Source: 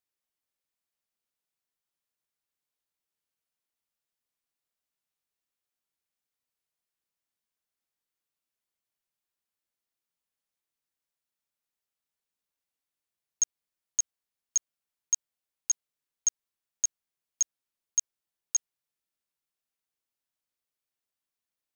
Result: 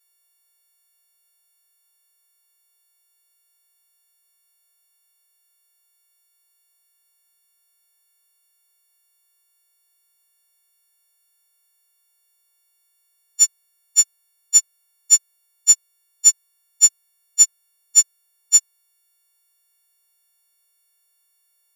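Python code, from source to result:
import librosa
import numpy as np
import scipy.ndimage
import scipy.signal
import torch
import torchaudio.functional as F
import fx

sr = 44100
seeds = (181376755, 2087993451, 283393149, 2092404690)

y = fx.freq_snap(x, sr, grid_st=4)
y = fx.hpss(y, sr, part='harmonic', gain_db=9)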